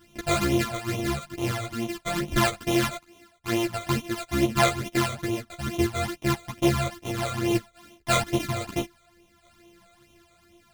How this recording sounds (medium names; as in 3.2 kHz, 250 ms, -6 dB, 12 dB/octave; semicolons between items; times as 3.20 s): a buzz of ramps at a fixed pitch in blocks of 128 samples; phasing stages 12, 2.3 Hz, lowest notch 280–1600 Hz; tremolo saw down 0.53 Hz, depth 40%; a shimmering, thickened sound